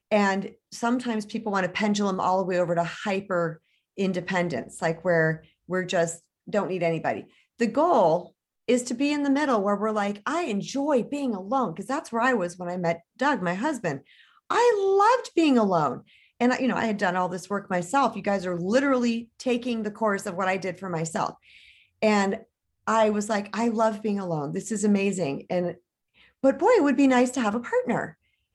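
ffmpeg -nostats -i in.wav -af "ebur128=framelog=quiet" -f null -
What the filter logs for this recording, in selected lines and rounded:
Integrated loudness:
  I:         -25.3 LUFS
  Threshold: -35.7 LUFS
Loudness range:
  LRA:         3.6 LU
  Threshold: -45.7 LUFS
  LRA low:   -27.3 LUFS
  LRA high:  -23.7 LUFS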